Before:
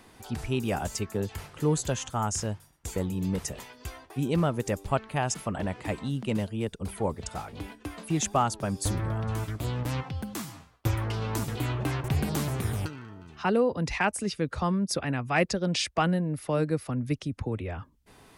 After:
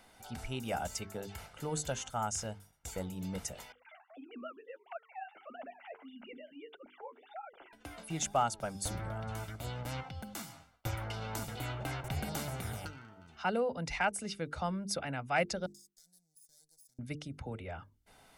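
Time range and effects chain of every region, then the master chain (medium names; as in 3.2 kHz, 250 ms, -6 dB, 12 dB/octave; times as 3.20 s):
3.72–7.73 s: formants replaced by sine waves + compression 2:1, threshold -39 dBFS + flange 1.6 Hz, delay 2.8 ms, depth 9.3 ms, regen +18%
15.66–16.99 s: comb filter that takes the minimum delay 0.58 ms + inverse Chebyshev high-pass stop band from 3 kHz + compression 12:1, threshold -50 dBFS
whole clip: peaking EQ 100 Hz -7 dB 2 oct; hum notches 50/100/150/200/250/300/350/400/450 Hz; comb 1.4 ms, depth 46%; trim -6 dB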